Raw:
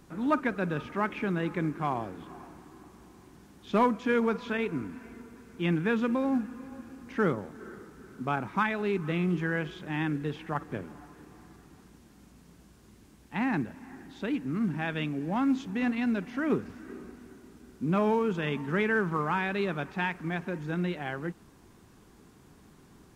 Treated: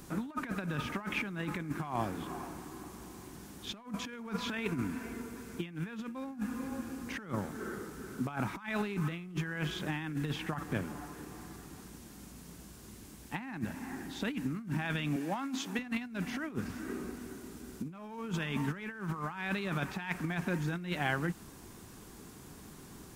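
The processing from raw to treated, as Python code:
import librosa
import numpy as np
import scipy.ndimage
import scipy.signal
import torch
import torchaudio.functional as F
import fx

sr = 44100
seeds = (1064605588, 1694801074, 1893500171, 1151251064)

y = fx.bessel_highpass(x, sr, hz=370.0, order=2, at=(15.16, 15.79))
y = fx.dynamic_eq(y, sr, hz=440.0, q=1.5, threshold_db=-44.0, ratio=4.0, max_db=-7)
y = fx.over_compress(y, sr, threshold_db=-35.0, ratio=-0.5)
y = fx.high_shelf(y, sr, hz=5700.0, db=10.0)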